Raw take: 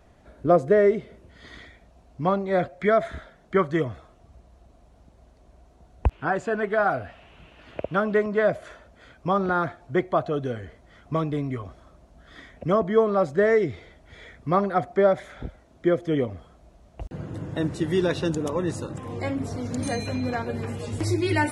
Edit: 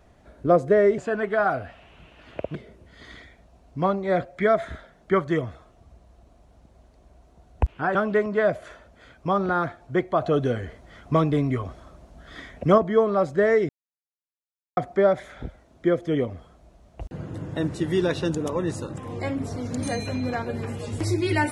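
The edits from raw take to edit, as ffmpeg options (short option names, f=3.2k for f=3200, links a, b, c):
-filter_complex "[0:a]asplit=8[a][b][c][d][e][f][g][h];[a]atrim=end=0.982[i];[b]atrim=start=6.378:end=7.952[j];[c]atrim=start=0.978:end=6.382[k];[d]atrim=start=7.948:end=10.222[l];[e]atrim=start=10.218:end=12.782,asetpts=PTS-STARTPTS,volume=5dB[m];[f]atrim=start=12.778:end=13.69,asetpts=PTS-STARTPTS,afade=t=out:st=0.908:d=0.004:c=hsin[n];[g]atrim=start=13.69:end=14.77,asetpts=PTS-STARTPTS,volume=0[o];[h]atrim=start=14.77,asetpts=PTS-STARTPTS,afade=t=in:d=0.004:c=hsin[p];[i][j]acrossfade=d=0.004:c1=hsin:c2=hsin[q];[q][k]acrossfade=d=0.004:c1=hsin:c2=hsin[r];[r][l]acrossfade=d=0.004:c1=hsin:c2=hsin[s];[s][m]acrossfade=d=0.004:c1=hsin:c2=hsin[t];[n][o][p]concat=n=3:v=0:a=1[u];[t][u]acrossfade=d=0.004:c1=hsin:c2=hsin"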